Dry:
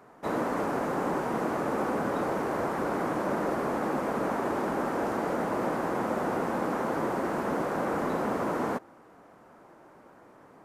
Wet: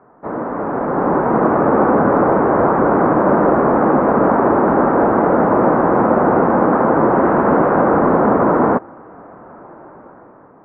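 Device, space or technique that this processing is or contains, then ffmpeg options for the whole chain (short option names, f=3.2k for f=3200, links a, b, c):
action camera in a waterproof case: -filter_complex "[0:a]asettb=1/sr,asplit=3[a][b][c];[a]atrim=end=7.124[d];[b]atrim=start=7.12:end=7.82,asetpts=PTS-STARTPTS,afade=t=in:d=0.004:c=qsin,afade=t=out:st=0.696:d=0.004:c=qsin,highshelf=f=2.3k:g=5[e];[c]atrim=start=7.816[f];[d][e]acrossfade=d=0.004:c1=hsin:c2=qsin[g];[g][f]acrossfade=d=0.004:c1=qsin:c2=hsin,lowpass=f=1.5k:w=0.5412,lowpass=f=1.5k:w=1.3066,dynaudnorm=f=280:g=7:m=11dB,volume=5.5dB" -ar 48000 -c:a aac -b:a 48k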